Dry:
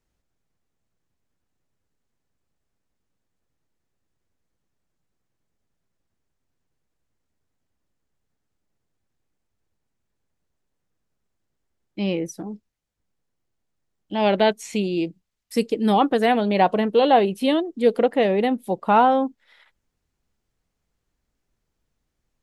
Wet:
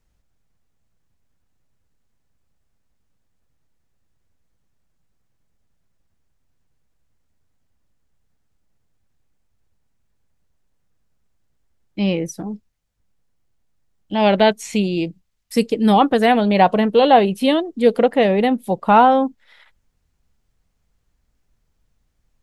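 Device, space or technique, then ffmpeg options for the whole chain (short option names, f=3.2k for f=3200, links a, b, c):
low shelf boost with a cut just above: -af "lowshelf=f=110:g=7.5,equalizer=f=350:t=o:w=0.67:g=-4,volume=4.5dB"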